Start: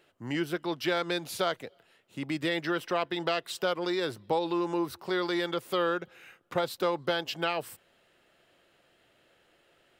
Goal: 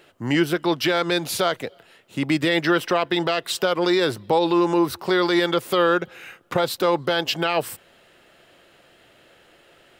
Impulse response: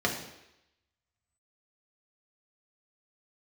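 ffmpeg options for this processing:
-af "alimiter=level_in=20dB:limit=-1dB:release=50:level=0:latency=1,volume=-8.5dB"

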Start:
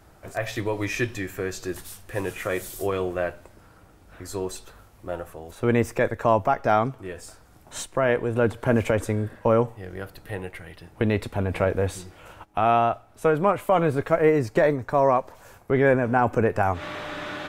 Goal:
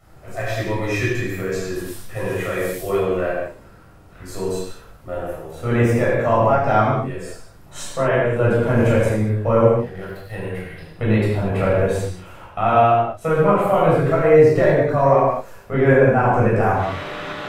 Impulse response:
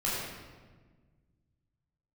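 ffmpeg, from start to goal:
-filter_complex "[0:a]asettb=1/sr,asplit=3[a][b][c];[a]atrim=end=9.714[d];[b]atrim=start=9.71:end=10.34,asetpts=PTS-STARTPTS,afade=t=in:d=0.004:c=qsin,afade=t=out:st=0.626:d=0.004:c=qsin,aeval=exprs='sgn(val(0))*max(abs(val(0))-0.00447,0)':c=same[e];[c]atrim=start=10.336[f];[d][e]acrossfade=d=0.004:c1=hsin:c2=qsin[g];[g][f]acrossfade=d=0.004:c1=qsin:c2=hsin[h];[1:a]atrim=start_sample=2205,afade=t=out:st=0.29:d=0.01,atrim=end_sample=13230[i];[h][i]afir=irnorm=-1:irlink=0,volume=-3.5dB"

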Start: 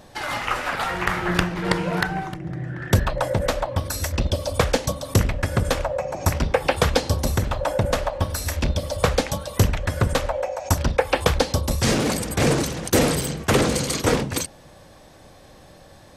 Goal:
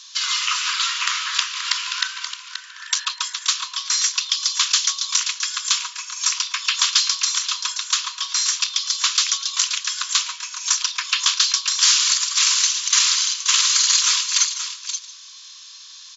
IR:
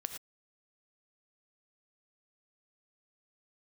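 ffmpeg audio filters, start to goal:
-filter_complex "[0:a]aexciter=amount=4.1:drive=9.2:freq=2.8k,asplit=2[a][b];[b]aecho=0:1:529:0.266[c];[a][c]amix=inputs=2:normalize=0,aeval=exprs='clip(val(0),-1,0.211)':c=same,afftfilt=real='re*between(b*sr/4096,950,7500)':imag='im*between(b*sr/4096,950,7500)':win_size=4096:overlap=0.75,asplit=2[d][e];[e]aecho=0:1:147|294|441:0.158|0.0444|0.0124[f];[d][f]amix=inputs=2:normalize=0,volume=-1dB"

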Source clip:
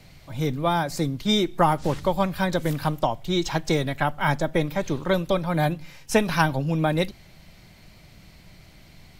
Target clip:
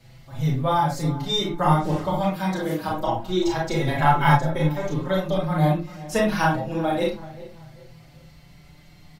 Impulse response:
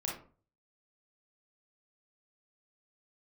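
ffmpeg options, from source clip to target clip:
-filter_complex "[0:a]asettb=1/sr,asplit=3[a][b][c];[a]atrim=end=2.174[d];[b]atrim=start=2.17:end=2.88,asetpts=PTS-STARTPTS,afade=t=in:d=0.004:c=qsin,afade=t=out:st=0.706:d=0.004:c=qsin,highpass=170[e];[c]atrim=start=2.876[f];[d][e]acrossfade=d=0.004:c1=hsin:c2=qsin[g];[g][f]acrossfade=d=0.004:c1=qsin:c2=hsin,asplit=2[h][i];[i]adelay=388,lowpass=f=2k:p=1,volume=-16.5dB,asplit=2[j][k];[k]adelay=388,lowpass=f=2k:p=1,volume=0.38,asplit=2[l][m];[m]adelay=388,lowpass=f=2k:p=1,volume=0.38[n];[h][j][l][n]amix=inputs=4:normalize=0[o];[1:a]atrim=start_sample=2205,atrim=end_sample=6174[p];[o][p]afir=irnorm=-1:irlink=0,asplit=3[q][r][s];[q]afade=t=out:st=3.86:d=0.02[t];[r]acontrast=55,afade=t=in:st=3.86:d=0.02,afade=t=out:st=4.35:d=0.02[u];[s]afade=t=in:st=4.35:d=0.02[v];[t][u][v]amix=inputs=3:normalize=0,bandreject=f=2.4k:w=18,asplit=2[w][x];[x]adelay=5.6,afreqshift=0.27[y];[w][y]amix=inputs=2:normalize=1"

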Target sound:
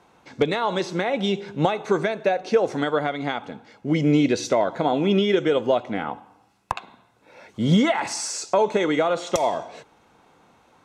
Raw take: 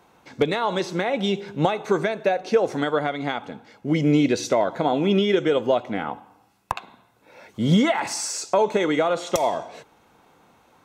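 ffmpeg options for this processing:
-af "lowpass=9.8k"

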